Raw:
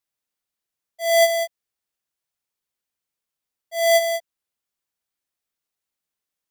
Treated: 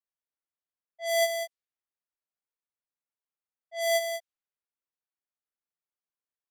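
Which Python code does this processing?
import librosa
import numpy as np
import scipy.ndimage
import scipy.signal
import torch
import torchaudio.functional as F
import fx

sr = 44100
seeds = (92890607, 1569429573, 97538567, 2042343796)

y = fx.env_lowpass(x, sr, base_hz=1700.0, full_db=-20.0)
y = fx.low_shelf(y, sr, hz=430.0, db=-7.5)
y = y * 10.0 ** (-7.5 / 20.0)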